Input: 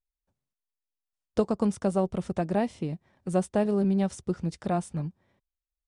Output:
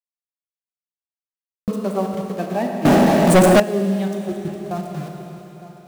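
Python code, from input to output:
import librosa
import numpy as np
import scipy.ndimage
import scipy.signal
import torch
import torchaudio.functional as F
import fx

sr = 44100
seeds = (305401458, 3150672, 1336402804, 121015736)

y = fx.bin_expand(x, sr, power=2.0)
y = np.where(np.abs(y) >= 10.0 ** (-39.5 / 20.0), y, 0.0)
y = scipy.signal.sosfilt(scipy.signal.butter(2, 160.0, 'highpass', fs=sr, output='sos'), y)
y = fx.level_steps(y, sr, step_db=16, at=(4.14, 4.77))
y = y + 10.0 ** (-17.0 / 20.0) * np.pad(y, (int(911 * sr / 1000.0), 0))[:len(y)]
y = fx.rev_schroeder(y, sr, rt60_s=3.9, comb_ms=25, drr_db=1.5)
y = fx.leveller(y, sr, passes=5, at=(2.85, 3.6))
y = fx.buffer_glitch(y, sr, at_s=(1.26,), block=2048, repeats=8)
y = y * 10.0 ** (7.5 / 20.0)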